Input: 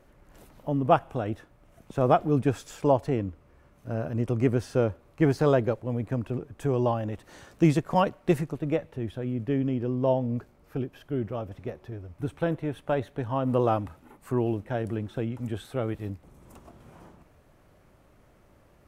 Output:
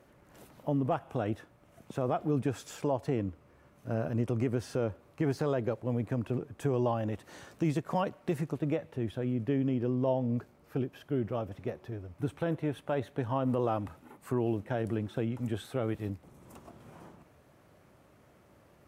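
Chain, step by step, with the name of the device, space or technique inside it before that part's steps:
podcast mastering chain (high-pass filter 88 Hz 12 dB per octave; de-essing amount 95%; downward compressor 2.5 to 1, threshold −25 dBFS, peak gain reduction 7 dB; brickwall limiter −19 dBFS, peak gain reduction 4.5 dB; MP3 96 kbit/s 44,100 Hz)

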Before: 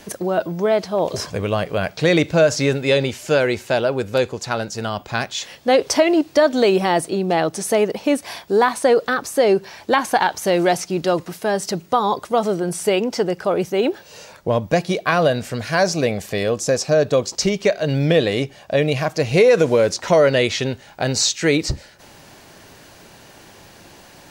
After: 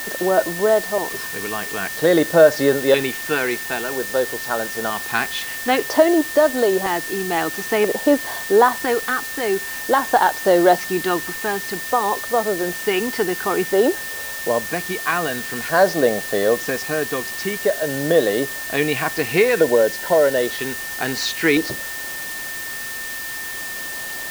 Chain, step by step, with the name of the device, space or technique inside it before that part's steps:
shortwave radio (band-pass filter 290–2,900 Hz; amplitude tremolo 0.37 Hz, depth 47%; auto-filter notch square 0.51 Hz 570–2,400 Hz; steady tone 1,800 Hz −34 dBFS; white noise bed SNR 12 dB)
0:19.52–0:20.37: notch filter 1,200 Hz, Q 5.7
level +4.5 dB

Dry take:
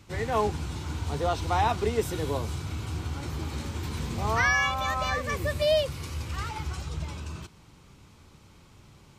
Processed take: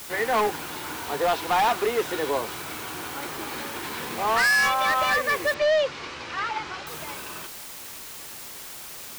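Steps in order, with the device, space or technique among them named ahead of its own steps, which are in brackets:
drive-through speaker (band-pass filter 430–3,600 Hz; parametric band 1,700 Hz +5 dB 0.28 octaves; hard clipping −26.5 dBFS, distortion −7 dB; white noise bed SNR 13 dB)
0:05.54–0:06.87: low-pass filter 5,700 Hz 24 dB per octave
level +8 dB

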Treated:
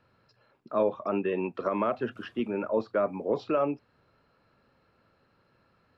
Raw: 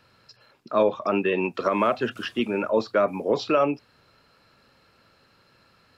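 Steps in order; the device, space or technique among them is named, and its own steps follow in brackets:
through cloth (high-shelf EQ 3,000 Hz −17 dB)
level −4.5 dB

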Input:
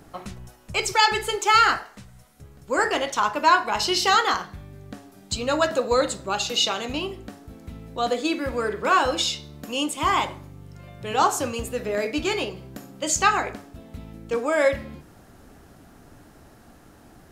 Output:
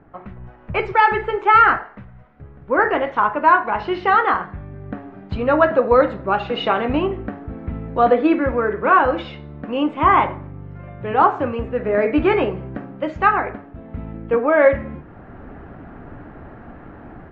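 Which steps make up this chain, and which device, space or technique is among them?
action camera in a waterproof case (low-pass filter 2,000 Hz 24 dB per octave; automatic gain control gain up to 13 dB; level −1 dB; AAC 48 kbit/s 44,100 Hz)

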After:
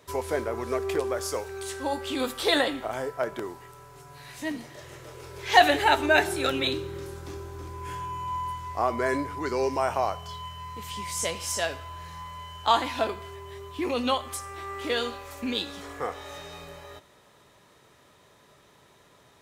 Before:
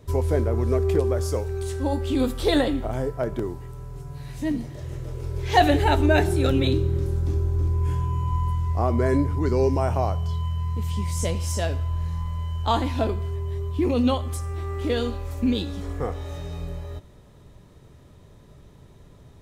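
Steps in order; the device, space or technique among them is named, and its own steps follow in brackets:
filter by subtraction (in parallel: low-pass filter 1,400 Hz 12 dB per octave + polarity inversion)
on the sum: level +2.5 dB

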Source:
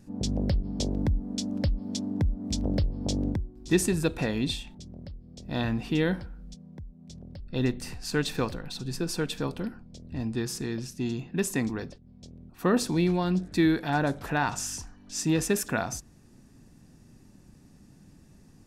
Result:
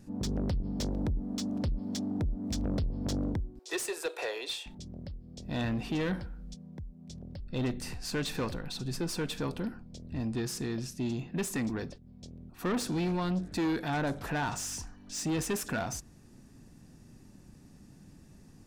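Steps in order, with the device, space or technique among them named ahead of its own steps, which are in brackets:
0:03.59–0:04.66: Butterworth high-pass 400 Hz 48 dB per octave
saturation between pre-emphasis and de-emphasis (high-shelf EQ 5,200 Hz +9.5 dB; soft clipping −26.5 dBFS, distortion −9 dB; high-shelf EQ 5,200 Hz −9.5 dB)

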